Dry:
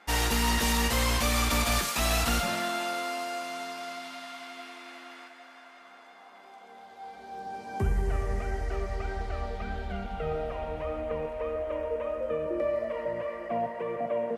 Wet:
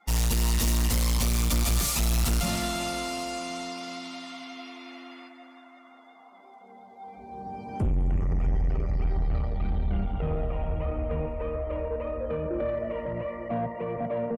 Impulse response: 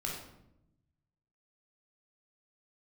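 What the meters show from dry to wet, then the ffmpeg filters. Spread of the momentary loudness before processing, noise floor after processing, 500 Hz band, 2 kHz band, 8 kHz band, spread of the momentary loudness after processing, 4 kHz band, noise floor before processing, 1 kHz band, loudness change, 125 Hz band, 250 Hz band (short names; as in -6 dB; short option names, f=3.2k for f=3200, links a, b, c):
19 LU, -52 dBFS, -1.0 dB, -6.0 dB, +1.5 dB, 16 LU, -2.0 dB, -52 dBFS, -3.5 dB, +1.5 dB, +6.0 dB, +3.0 dB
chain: -filter_complex "[0:a]afftdn=nr=21:nf=-52,bass=f=250:g=14,treble=f=4k:g=10,bandreject=f=1.6k:w=5.1,asoftclip=type=tanh:threshold=-22dB,asplit=2[a][b];[b]adelay=321,lowpass=f=2k:p=1,volume=-13dB,asplit=2[c][d];[d]adelay=321,lowpass=f=2k:p=1,volume=0.36,asplit=2[e][f];[f]adelay=321,lowpass=f=2k:p=1,volume=0.36,asplit=2[g][h];[h]adelay=321,lowpass=f=2k:p=1,volume=0.36[i];[a][c][e][g][i]amix=inputs=5:normalize=0"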